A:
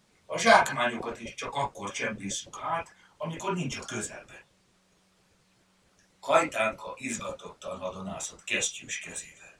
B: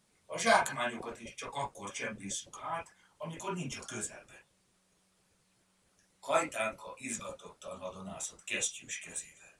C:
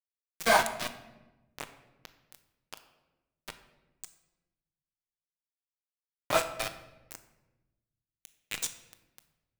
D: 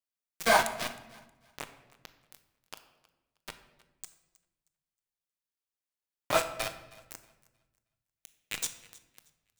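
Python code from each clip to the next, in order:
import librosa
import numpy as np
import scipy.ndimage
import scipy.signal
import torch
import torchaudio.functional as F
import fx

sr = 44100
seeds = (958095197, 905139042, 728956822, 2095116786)

y1 = fx.peak_eq(x, sr, hz=9900.0, db=9.5, octaves=0.67)
y1 = F.gain(torch.from_numpy(y1), -7.0).numpy()
y2 = np.where(np.abs(y1) >= 10.0 ** (-26.5 / 20.0), y1, 0.0)
y2 = fx.room_shoebox(y2, sr, seeds[0], volume_m3=500.0, walls='mixed', distance_m=0.51)
y2 = F.gain(torch.from_numpy(y2), 3.0).numpy()
y3 = fx.echo_thinned(y2, sr, ms=315, feedback_pct=27, hz=360.0, wet_db=-22.0)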